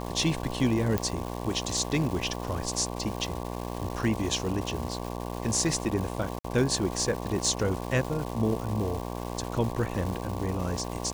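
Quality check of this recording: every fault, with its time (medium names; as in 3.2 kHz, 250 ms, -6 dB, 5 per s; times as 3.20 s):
buzz 60 Hz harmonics 19 -35 dBFS
crackle 570 per s -34 dBFS
0.98 s: pop -12 dBFS
6.39–6.44 s: dropout 54 ms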